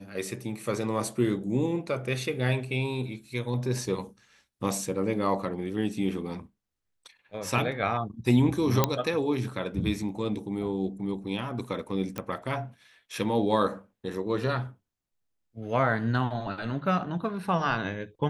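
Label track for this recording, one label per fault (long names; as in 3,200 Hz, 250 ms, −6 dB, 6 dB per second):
8.840000	8.840000	click −6 dBFS
12.180000	12.180000	click −18 dBFS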